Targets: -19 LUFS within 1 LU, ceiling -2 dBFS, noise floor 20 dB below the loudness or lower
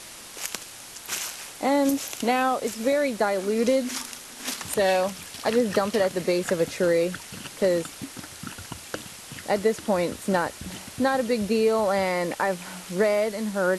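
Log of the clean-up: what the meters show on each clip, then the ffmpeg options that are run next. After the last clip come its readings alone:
noise floor -43 dBFS; noise floor target -46 dBFS; loudness -25.5 LUFS; peak -9.0 dBFS; loudness target -19.0 LUFS
-> -af "afftdn=nr=6:nf=-43"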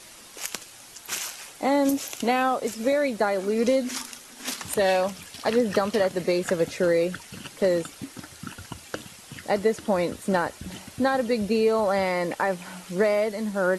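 noise floor -47 dBFS; loudness -25.5 LUFS; peak -9.0 dBFS; loudness target -19.0 LUFS
-> -af "volume=6.5dB"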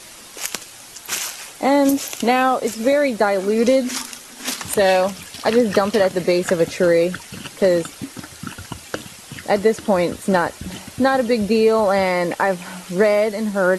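loudness -19.0 LUFS; peak -2.5 dBFS; noise floor -41 dBFS

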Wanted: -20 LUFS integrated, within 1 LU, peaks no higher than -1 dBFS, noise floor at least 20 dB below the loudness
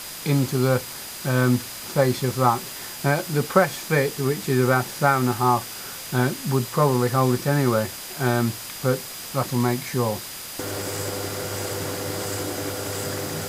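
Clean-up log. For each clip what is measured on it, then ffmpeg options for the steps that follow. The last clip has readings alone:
steady tone 4900 Hz; tone level -43 dBFS; noise floor -36 dBFS; noise floor target -44 dBFS; loudness -23.5 LUFS; peak -3.5 dBFS; loudness target -20.0 LUFS
-> -af "bandreject=f=4.9k:w=30"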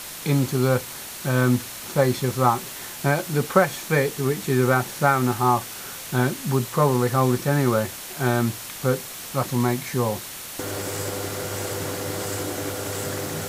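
steady tone none; noise floor -36 dBFS; noise floor target -44 dBFS
-> -af "afftdn=nr=8:nf=-36"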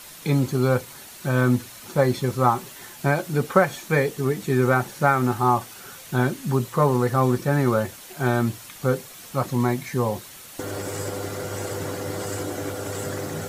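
noise floor -43 dBFS; noise floor target -44 dBFS
-> -af "afftdn=nr=6:nf=-43"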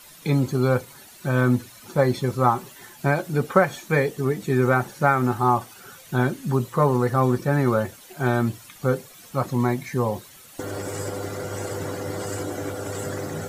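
noise floor -47 dBFS; loudness -24.0 LUFS; peak -4.0 dBFS; loudness target -20.0 LUFS
-> -af "volume=4dB,alimiter=limit=-1dB:level=0:latency=1"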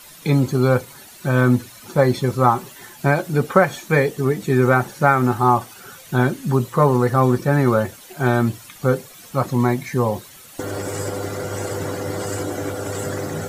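loudness -20.0 LUFS; peak -1.0 dBFS; noise floor -43 dBFS

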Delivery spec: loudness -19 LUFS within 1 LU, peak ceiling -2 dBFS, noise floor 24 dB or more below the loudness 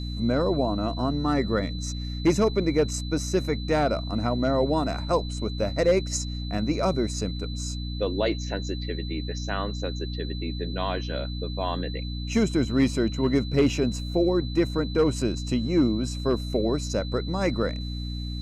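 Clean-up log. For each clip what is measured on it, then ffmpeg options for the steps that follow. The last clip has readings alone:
hum 60 Hz; harmonics up to 300 Hz; hum level -29 dBFS; steady tone 4000 Hz; tone level -40 dBFS; loudness -26.5 LUFS; peak -11.5 dBFS; loudness target -19.0 LUFS
-> -af "bandreject=f=60:t=h:w=6,bandreject=f=120:t=h:w=6,bandreject=f=180:t=h:w=6,bandreject=f=240:t=h:w=6,bandreject=f=300:t=h:w=6"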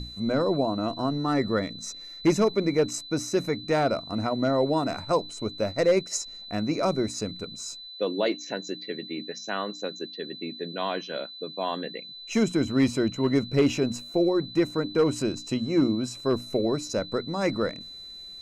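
hum none; steady tone 4000 Hz; tone level -40 dBFS
-> -af "bandreject=f=4k:w=30"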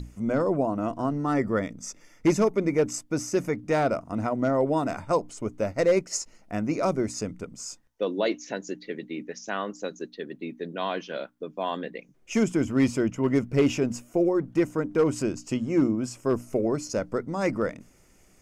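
steady tone none; loudness -27.5 LUFS; peak -11.5 dBFS; loudness target -19.0 LUFS
-> -af "volume=8.5dB"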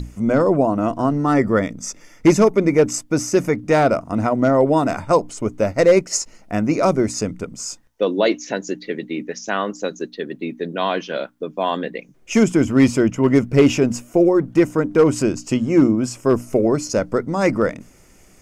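loudness -19.0 LUFS; peak -3.0 dBFS; noise floor -50 dBFS

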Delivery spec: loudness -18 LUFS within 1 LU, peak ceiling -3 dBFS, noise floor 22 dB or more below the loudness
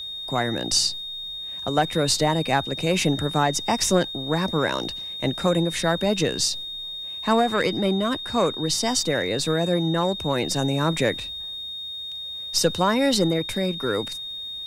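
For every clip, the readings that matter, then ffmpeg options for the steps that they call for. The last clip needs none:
steady tone 3700 Hz; tone level -31 dBFS; loudness -23.5 LUFS; peak -6.0 dBFS; loudness target -18.0 LUFS
-> -af "bandreject=f=3.7k:w=30"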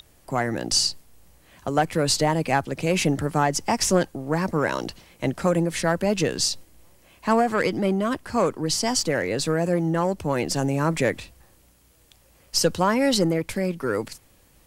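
steady tone none; loudness -23.5 LUFS; peak -6.0 dBFS; loudness target -18.0 LUFS
-> -af "volume=5.5dB,alimiter=limit=-3dB:level=0:latency=1"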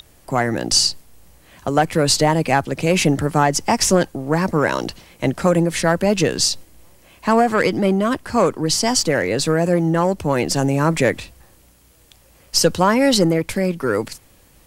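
loudness -18.0 LUFS; peak -3.0 dBFS; noise floor -52 dBFS

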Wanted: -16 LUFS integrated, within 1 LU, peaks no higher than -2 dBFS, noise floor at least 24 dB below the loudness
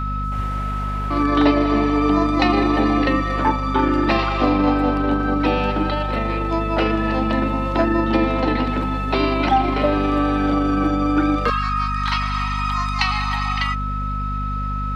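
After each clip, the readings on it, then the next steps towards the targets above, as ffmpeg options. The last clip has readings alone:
hum 50 Hz; harmonics up to 250 Hz; hum level -22 dBFS; steady tone 1300 Hz; tone level -26 dBFS; loudness -20.0 LUFS; peak -4.0 dBFS; loudness target -16.0 LUFS
-> -af "bandreject=f=50:t=h:w=4,bandreject=f=100:t=h:w=4,bandreject=f=150:t=h:w=4,bandreject=f=200:t=h:w=4,bandreject=f=250:t=h:w=4"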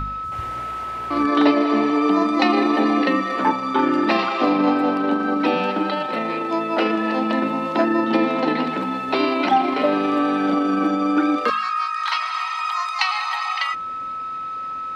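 hum none; steady tone 1300 Hz; tone level -26 dBFS
-> -af "bandreject=f=1.3k:w=30"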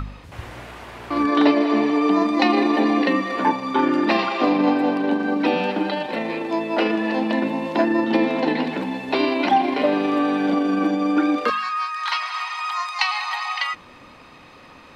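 steady tone none; loudness -21.0 LUFS; peak -4.5 dBFS; loudness target -16.0 LUFS
-> -af "volume=5dB,alimiter=limit=-2dB:level=0:latency=1"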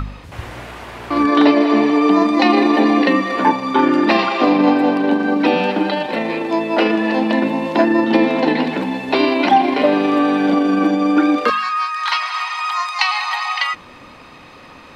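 loudness -16.0 LUFS; peak -2.0 dBFS; noise floor -41 dBFS

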